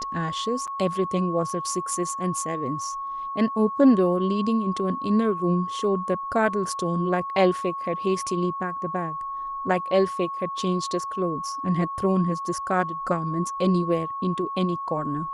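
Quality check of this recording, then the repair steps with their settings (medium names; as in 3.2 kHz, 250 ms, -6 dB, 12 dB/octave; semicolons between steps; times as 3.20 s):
whine 1.1 kHz -29 dBFS
0.67–0.68 s: dropout 7.1 ms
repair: band-stop 1.1 kHz, Q 30; interpolate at 0.67 s, 7.1 ms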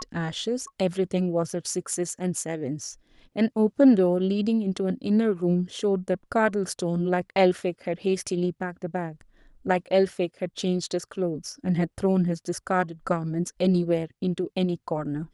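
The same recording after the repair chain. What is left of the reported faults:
nothing left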